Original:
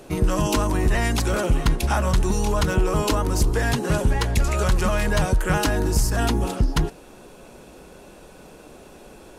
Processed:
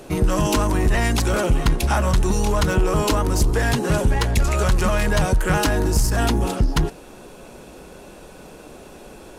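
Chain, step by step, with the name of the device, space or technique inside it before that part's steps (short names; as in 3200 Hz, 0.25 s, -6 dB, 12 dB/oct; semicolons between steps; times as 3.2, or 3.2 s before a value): parallel distortion (in parallel at -6 dB: hard clip -23.5 dBFS, distortion -7 dB)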